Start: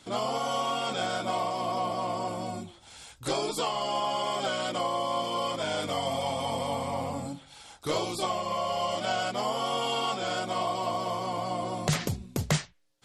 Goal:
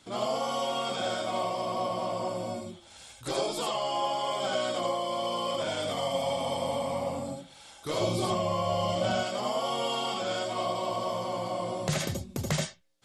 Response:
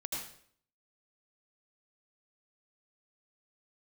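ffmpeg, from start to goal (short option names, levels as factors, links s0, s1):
-filter_complex "[0:a]asettb=1/sr,asplit=3[s0][s1][s2];[s0]atrim=end=8.004[s3];[s1]atrim=start=8:end=9.15,asetpts=PTS-STARTPTS,afade=t=in:d=0.004:c=qsin,afade=t=out:st=1.146:d=0.004:c=qsin,equalizer=f=81:w=0.37:g=13.5[s4];[s2]atrim=start=9.146[s5];[s3][s4]acrossfade=d=0.004:c1=hsin:c2=qsin[s6];[s6][s5]acrossfade=d=0.004:c1=qsin:c2=hsin[s7];[1:a]atrim=start_sample=2205,atrim=end_sample=3969[s8];[s7][s8]afir=irnorm=-1:irlink=0"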